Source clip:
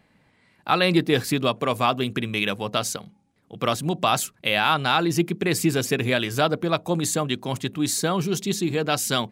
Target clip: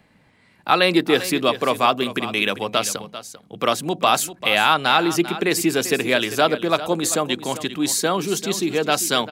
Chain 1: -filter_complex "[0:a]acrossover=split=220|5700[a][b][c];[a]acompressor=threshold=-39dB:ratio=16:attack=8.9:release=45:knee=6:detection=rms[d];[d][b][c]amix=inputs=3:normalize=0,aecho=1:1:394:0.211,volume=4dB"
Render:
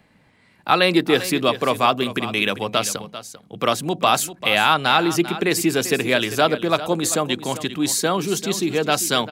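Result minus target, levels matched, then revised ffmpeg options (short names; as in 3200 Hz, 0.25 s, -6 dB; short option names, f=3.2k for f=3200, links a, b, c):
compressor: peak gain reduction -5.5 dB
-filter_complex "[0:a]acrossover=split=220|5700[a][b][c];[a]acompressor=threshold=-45dB:ratio=16:attack=8.9:release=45:knee=6:detection=rms[d];[d][b][c]amix=inputs=3:normalize=0,aecho=1:1:394:0.211,volume=4dB"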